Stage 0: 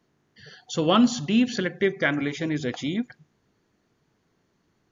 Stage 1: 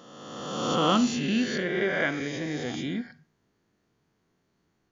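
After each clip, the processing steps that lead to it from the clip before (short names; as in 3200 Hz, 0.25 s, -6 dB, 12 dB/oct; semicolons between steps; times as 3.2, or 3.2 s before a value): spectral swells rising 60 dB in 1.64 s; Schroeder reverb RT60 0.37 s, combs from 33 ms, DRR 15.5 dB; gain -7 dB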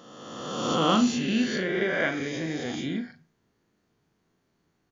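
doubler 37 ms -9 dB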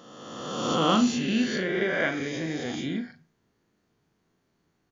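nothing audible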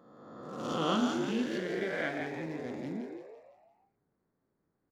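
Wiener smoothing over 15 samples; on a send: frequency-shifting echo 0.169 s, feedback 45%, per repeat +110 Hz, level -6 dB; on the sum: gain -8 dB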